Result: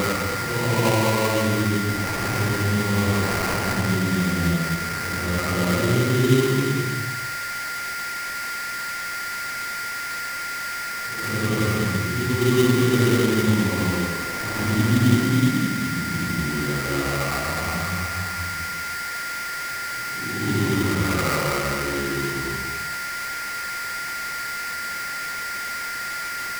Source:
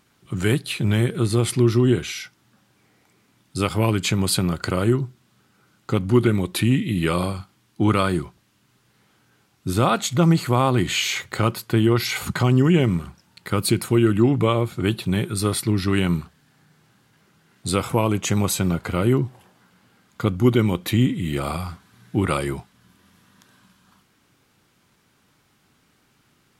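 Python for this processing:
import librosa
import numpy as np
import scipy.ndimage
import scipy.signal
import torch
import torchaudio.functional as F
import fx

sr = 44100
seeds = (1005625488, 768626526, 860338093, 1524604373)

y = fx.paulstretch(x, sr, seeds[0], factor=4.7, window_s=0.25, from_s=17.78)
y = y + 10.0 ** (-25.0 / 20.0) * np.sin(2.0 * np.pi * 1400.0 * np.arange(len(y)) / sr)
y = fx.sample_hold(y, sr, seeds[1], rate_hz=3400.0, jitter_pct=20)
y = F.gain(torch.from_numpy(y), -1.5).numpy()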